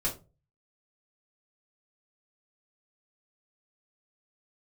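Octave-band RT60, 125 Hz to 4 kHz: 0.60 s, 0.40 s, 0.35 s, 0.25 s, 0.20 s, 0.20 s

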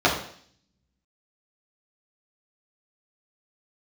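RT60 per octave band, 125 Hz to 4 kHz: 0.90 s, 0.70 s, 0.60 s, 0.55 s, 0.60 s, 0.70 s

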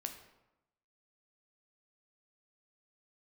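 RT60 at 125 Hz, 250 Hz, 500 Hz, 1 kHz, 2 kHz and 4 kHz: 1.0 s, 1.0 s, 0.90 s, 0.95 s, 0.75 s, 0.60 s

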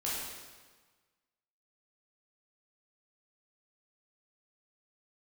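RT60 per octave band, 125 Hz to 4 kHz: 1.5 s, 1.4 s, 1.4 s, 1.4 s, 1.3 s, 1.2 s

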